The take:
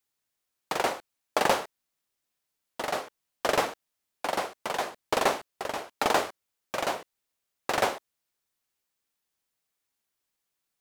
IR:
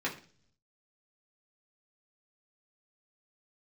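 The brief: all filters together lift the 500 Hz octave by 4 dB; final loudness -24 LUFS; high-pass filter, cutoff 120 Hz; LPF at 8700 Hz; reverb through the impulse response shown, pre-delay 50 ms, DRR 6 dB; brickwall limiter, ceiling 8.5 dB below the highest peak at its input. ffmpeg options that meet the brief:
-filter_complex "[0:a]highpass=120,lowpass=8.7k,equalizer=f=500:t=o:g=5,alimiter=limit=-15dB:level=0:latency=1,asplit=2[a][b];[1:a]atrim=start_sample=2205,adelay=50[c];[b][c]afir=irnorm=-1:irlink=0,volume=-12.5dB[d];[a][d]amix=inputs=2:normalize=0,volume=6.5dB"

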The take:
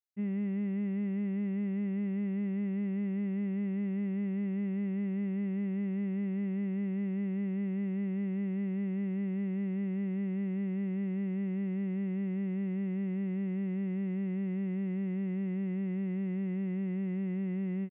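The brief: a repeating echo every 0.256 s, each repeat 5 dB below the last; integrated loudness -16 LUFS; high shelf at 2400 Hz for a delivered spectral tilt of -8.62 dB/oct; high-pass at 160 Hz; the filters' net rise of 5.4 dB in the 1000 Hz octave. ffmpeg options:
-af "highpass=160,equalizer=f=1k:t=o:g=8,highshelf=f=2.4k:g=-4.5,aecho=1:1:256|512|768|1024|1280|1536|1792:0.562|0.315|0.176|0.0988|0.0553|0.031|0.0173,volume=17.5dB"

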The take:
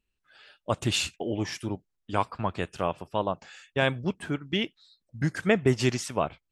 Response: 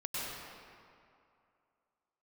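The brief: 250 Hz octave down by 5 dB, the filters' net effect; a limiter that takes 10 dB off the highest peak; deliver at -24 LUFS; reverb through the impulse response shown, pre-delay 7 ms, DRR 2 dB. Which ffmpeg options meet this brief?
-filter_complex "[0:a]equalizer=f=250:t=o:g=-7,alimiter=limit=-19.5dB:level=0:latency=1,asplit=2[a][b];[1:a]atrim=start_sample=2205,adelay=7[c];[b][c]afir=irnorm=-1:irlink=0,volume=-6dB[d];[a][d]amix=inputs=2:normalize=0,volume=8dB"

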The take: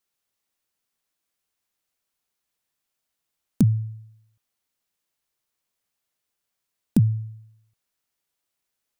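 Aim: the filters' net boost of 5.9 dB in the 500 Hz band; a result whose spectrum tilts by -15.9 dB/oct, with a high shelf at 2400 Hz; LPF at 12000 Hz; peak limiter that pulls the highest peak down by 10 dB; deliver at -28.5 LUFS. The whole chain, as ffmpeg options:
-af "lowpass=12k,equalizer=f=500:t=o:g=8,highshelf=f=2.4k:g=5.5,volume=-2dB,alimiter=limit=-17dB:level=0:latency=1"

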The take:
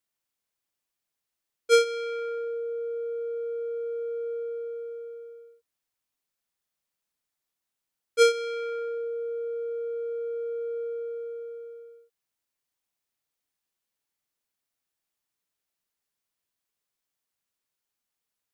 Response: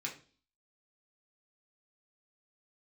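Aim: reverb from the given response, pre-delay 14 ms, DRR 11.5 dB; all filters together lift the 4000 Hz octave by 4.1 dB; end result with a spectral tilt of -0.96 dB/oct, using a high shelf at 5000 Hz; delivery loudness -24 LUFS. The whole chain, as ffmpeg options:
-filter_complex "[0:a]equalizer=f=4k:t=o:g=8,highshelf=f=5k:g=-6.5,asplit=2[a][b];[1:a]atrim=start_sample=2205,adelay=14[c];[b][c]afir=irnorm=-1:irlink=0,volume=-12.5dB[d];[a][d]amix=inputs=2:normalize=0,volume=6.5dB"

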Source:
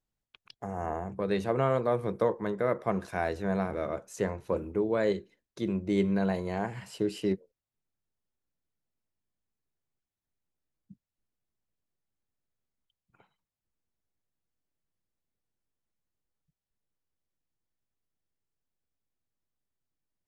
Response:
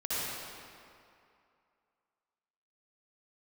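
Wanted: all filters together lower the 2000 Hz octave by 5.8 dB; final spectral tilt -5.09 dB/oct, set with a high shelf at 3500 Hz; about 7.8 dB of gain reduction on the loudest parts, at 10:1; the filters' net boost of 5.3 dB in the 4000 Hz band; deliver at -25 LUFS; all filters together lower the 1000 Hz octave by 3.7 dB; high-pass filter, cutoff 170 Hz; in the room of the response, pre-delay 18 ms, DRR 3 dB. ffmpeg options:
-filter_complex "[0:a]highpass=170,equalizer=f=1k:t=o:g=-4,equalizer=f=2k:t=o:g=-8.5,highshelf=f=3.5k:g=3,equalizer=f=4k:t=o:g=7.5,acompressor=threshold=-31dB:ratio=10,asplit=2[a][b];[1:a]atrim=start_sample=2205,adelay=18[c];[b][c]afir=irnorm=-1:irlink=0,volume=-10.5dB[d];[a][d]amix=inputs=2:normalize=0,volume=11.5dB"

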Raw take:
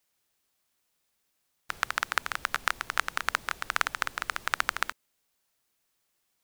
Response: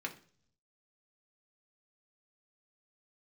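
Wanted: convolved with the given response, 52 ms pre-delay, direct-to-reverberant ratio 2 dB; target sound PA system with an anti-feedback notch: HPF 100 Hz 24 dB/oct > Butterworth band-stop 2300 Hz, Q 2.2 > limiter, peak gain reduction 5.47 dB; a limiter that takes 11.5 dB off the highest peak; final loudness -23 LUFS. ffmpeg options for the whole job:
-filter_complex "[0:a]alimiter=limit=-14dB:level=0:latency=1,asplit=2[a][b];[1:a]atrim=start_sample=2205,adelay=52[c];[b][c]afir=irnorm=-1:irlink=0,volume=-3.5dB[d];[a][d]amix=inputs=2:normalize=0,highpass=f=100:w=0.5412,highpass=f=100:w=1.3066,asuperstop=centerf=2300:order=8:qfactor=2.2,volume=17dB,alimiter=limit=-6dB:level=0:latency=1"

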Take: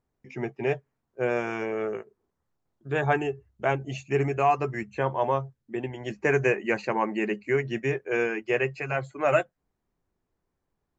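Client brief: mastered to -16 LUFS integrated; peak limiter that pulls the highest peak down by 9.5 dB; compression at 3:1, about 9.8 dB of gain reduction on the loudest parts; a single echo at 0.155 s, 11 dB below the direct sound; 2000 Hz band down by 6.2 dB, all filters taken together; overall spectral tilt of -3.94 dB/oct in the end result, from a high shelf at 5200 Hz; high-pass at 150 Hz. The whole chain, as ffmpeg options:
-af "highpass=150,equalizer=f=2k:t=o:g=-7.5,highshelf=f=5.2k:g=-5,acompressor=threshold=-31dB:ratio=3,alimiter=level_in=4.5dB:limit=-24dB:level=0:latency=1,volume=-4.5dB,aecho=1:1:155:0.282,volume=23dB"

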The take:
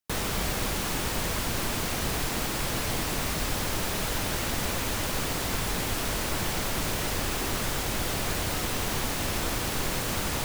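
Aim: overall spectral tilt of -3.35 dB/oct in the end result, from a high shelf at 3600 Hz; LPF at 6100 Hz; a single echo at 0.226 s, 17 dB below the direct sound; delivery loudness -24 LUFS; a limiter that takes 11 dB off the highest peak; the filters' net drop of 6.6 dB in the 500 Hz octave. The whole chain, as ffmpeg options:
-af "lowpass=6.1k,equalizer=f=500:t=o:g=-9,highshelf=f=3.6k:g=9,alimiter=level_in=1dB:limit=-24dB:level=0:latency=1,volume=-1dB,aecho=1:1:226:0.141,volume=9dB"

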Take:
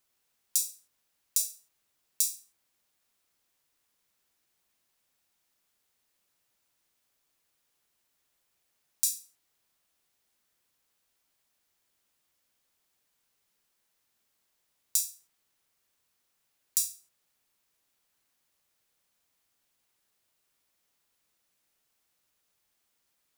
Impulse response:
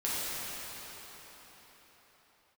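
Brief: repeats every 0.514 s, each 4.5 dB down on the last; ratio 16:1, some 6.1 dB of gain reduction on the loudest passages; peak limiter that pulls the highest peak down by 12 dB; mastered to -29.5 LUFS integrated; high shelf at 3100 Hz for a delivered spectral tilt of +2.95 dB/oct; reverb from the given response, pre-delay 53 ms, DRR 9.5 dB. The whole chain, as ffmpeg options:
-filter_complex "[0:a]highshelf=f=3.1k:g=-8.5,acompressor=threshold=-35dB:ratio=16,alimiter=level_in=1.5dB:limit=-24dB:level=0:latency=1,volume=-1.5dB,aecho=1:1:514|1028|1542|2056|2570|3084|3598|4112|4626:0.596|0.357|0.214|0.129|0.0772|0.0463|0.0278|0.0167|0.01,asplit=2[a][b];[1:a]atrim=start_sample=2205,adelay=53[c];[b][c]afir=irnorm=-1:irlink=0,volume=-18.5dB[d];[a][d]amix=inputs=2:normalize=0,volume=22dB"

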